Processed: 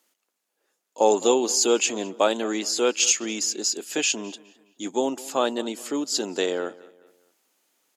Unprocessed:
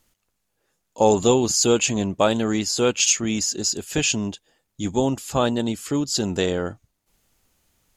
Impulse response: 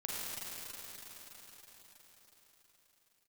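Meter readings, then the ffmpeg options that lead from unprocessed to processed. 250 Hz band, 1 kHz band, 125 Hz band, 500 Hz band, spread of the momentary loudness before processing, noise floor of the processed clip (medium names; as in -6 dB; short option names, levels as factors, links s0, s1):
-5.5 dB, -1.5 dB, under -20 dB, -1.5 dB, 8 LU, -80 dBFS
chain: -filter_complex "[0:a]highpass=f=280:w=0.5412,highpass=f=280:w=1.3066,asplit=2[s0][s1];[s1]adelay=209,lowpass=f=4100:p=1,volume=0.0944,asplit=2[s2][s3];[s3]adelay=209,lowpass=f=4100:p=1,volume=0.4,asplit=2[s4][s5];[s5]adelay=209,lowpass=f=4100:p=1,volume=0.4[s6];[s0][s2][s4][s6]amix=inputs=4:normalize=0,volume=0.841"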